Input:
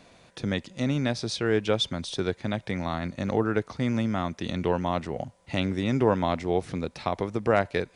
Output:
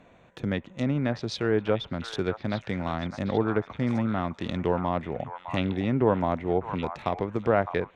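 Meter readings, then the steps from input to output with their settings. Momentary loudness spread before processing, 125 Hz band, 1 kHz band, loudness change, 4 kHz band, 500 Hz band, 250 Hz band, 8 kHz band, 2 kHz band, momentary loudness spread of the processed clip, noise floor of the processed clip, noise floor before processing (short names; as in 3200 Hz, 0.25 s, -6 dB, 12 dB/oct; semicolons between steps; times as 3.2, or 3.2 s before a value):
7 LU, 0.0 dB, +0.5 dB, -0.5 dB, -6.0 dB, 0.0 dB, 0.0 dB, n/a, -1.5 dB, 7 LU, -56 dBFS, -59 dBFS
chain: Wiener smoothing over 9 samples; treble ducked by the level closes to 1800 Hz, closed at -20.5 dBFS; delay with a stepping band-pass 0.608 s, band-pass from 1100 Hz, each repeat 1.4 oct, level -5 dB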